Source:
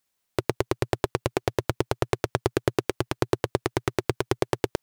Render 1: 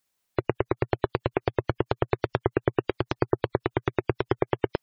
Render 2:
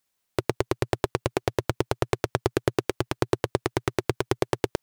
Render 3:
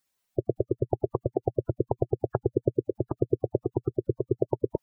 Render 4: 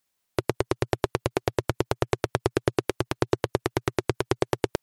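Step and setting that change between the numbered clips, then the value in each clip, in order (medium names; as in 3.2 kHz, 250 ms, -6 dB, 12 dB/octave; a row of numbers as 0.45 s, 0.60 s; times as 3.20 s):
spectral gate, under each frame's peak: -25 dB, -55 dB, -10 dB, -40 dB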